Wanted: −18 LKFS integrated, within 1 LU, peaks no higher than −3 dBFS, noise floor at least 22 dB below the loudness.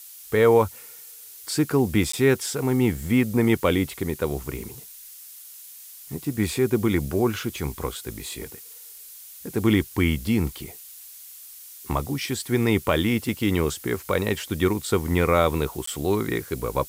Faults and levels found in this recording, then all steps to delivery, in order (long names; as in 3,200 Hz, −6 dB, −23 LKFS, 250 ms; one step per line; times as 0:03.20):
number of dropouts 2; longest dropout 14 ms; background noise floor −44 dBFS; target noise floor −46 dBFS; integrated loudness −24.0 LKFS; sample peak −7.5 dBFS; target loudness −18.0 LKFS
→ repair the gap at 0:02.12/0:15.86, 14 ms
broadband denoise 6 dB, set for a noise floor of −44 dBFS
level +6 dB
brickwall limiter −3 dBFS